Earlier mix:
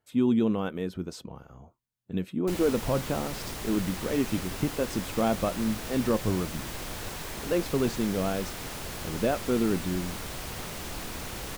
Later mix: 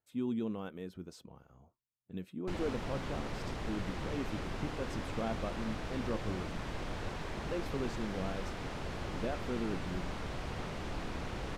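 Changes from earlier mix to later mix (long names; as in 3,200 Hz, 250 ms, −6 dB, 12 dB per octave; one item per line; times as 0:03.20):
speech −11.5 dB
background: add head-to-tape spacing loss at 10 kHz 22 dB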